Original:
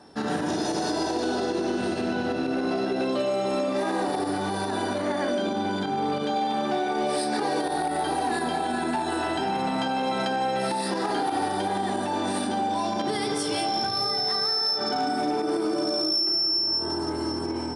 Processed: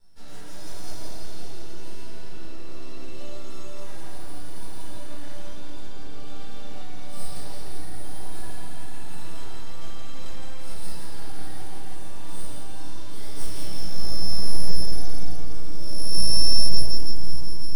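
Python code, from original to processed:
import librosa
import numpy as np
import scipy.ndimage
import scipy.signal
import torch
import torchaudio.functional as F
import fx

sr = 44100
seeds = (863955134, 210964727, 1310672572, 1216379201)

p1 = librosa.effects.preemphasis(x, coef=0.97, zi=[0.0])
p2 = fx.sample_hold(p1, sr, seeds[0], rate_hz=1300.0, jitter_pct=20)
p3 = p1 + (p2 * 10.0 ** (-12.0 / 20.0))
p4 = np.maximum(p3, 0.0)
p5 = fx.low_shelf(p4, sr, hz=400.0, db=11.5)
p6 = p5 + fx.echo_split(p5, sr, split_hz=400.0, low_ms=520, high_ms=168, feedback_pct=52, wet_db=-5.0, dry=0)
p7 = fx.room_shoebox(p6, sr, seeds[1], volume_m3=440.0, walls='mixed', distance_m=4.4)
y = p7 * 10.0 ** (-11.0 / 20.0)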